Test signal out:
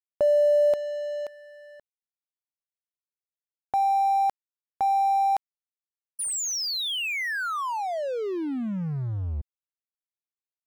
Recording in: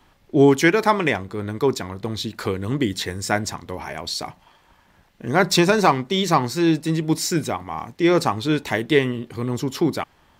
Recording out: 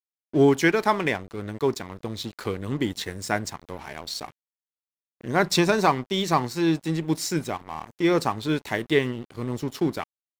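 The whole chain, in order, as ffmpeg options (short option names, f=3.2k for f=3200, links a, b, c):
-af "aeval=exprs='sgn(val(0))*max(abs(val(0))-0.0126,0)':c=same,volume=-3.5dB"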